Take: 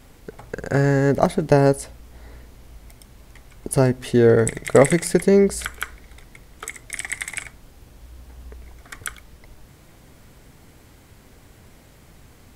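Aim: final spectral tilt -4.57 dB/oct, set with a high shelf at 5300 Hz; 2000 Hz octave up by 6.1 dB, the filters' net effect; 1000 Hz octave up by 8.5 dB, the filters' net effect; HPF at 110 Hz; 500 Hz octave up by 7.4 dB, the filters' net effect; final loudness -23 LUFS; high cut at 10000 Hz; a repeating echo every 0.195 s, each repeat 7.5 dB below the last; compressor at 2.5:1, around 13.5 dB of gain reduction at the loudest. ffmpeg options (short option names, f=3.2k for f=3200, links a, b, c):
-af "highpass=110,lowpass=10k,equalizer=f=500:t=o:g=7,equalizer=f=1k:t=o:g=8,equalizer=f=2k:t=o:g=3.5,highshelf=f=5.3k:g=6,acompressor=threshold=-21dB:ratio=2.5,aecho=1:1:195|390|585|780|975:0.422|0.177|0.0744|0.0312|0.0131"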